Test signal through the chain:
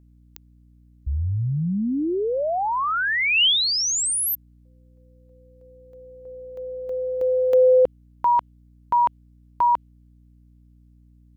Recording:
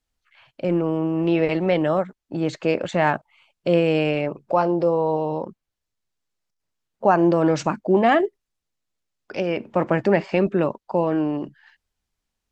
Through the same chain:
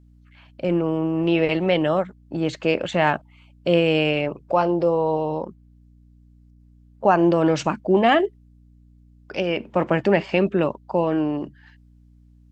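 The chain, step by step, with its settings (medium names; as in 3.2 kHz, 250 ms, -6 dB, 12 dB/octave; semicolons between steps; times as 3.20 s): dynamic bell 3 kHz, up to +7 dB, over -46 dBFS, Q 2.6; hum 60 Hz, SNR 29 dB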